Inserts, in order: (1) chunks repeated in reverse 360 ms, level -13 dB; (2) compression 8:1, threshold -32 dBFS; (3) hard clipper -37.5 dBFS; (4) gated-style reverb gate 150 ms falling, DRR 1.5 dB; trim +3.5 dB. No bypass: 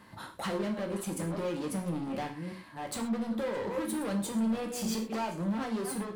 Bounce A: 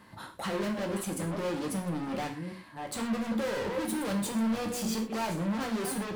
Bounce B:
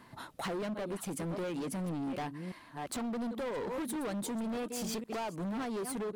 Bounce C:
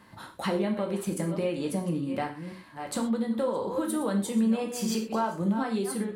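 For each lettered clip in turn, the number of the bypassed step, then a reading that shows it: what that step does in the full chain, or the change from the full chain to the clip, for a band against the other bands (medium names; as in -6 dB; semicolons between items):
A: 2, mean gain reduction 7.0 dB; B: 4, momentary loudness spread change -3 LU; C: 3, distortion -8 dB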